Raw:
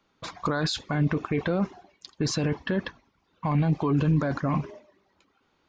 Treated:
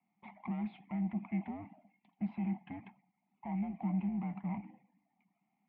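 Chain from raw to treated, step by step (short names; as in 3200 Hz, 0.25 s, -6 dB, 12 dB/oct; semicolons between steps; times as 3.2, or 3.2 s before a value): one-sided clip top -31.5 dBFS; vowel filter u; mistuned SSB -100 Hz 270–3000 Hz; gain +1 dB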